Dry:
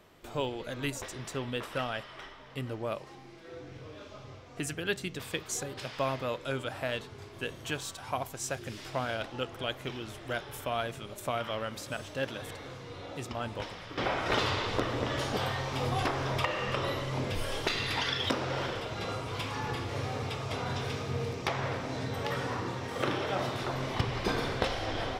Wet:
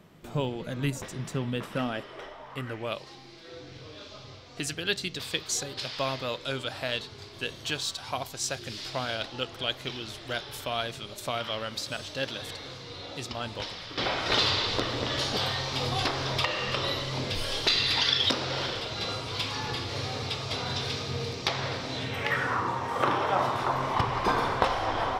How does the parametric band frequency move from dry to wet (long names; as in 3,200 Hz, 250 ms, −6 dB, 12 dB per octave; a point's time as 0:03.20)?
parametric band +13 dB 1 octave
0:01.68 170 Hz
0:02.44 780 Hz
0:03.01 4,300 Hz
0:21.85 4,300 Hz
0:22.71 1,000 Hz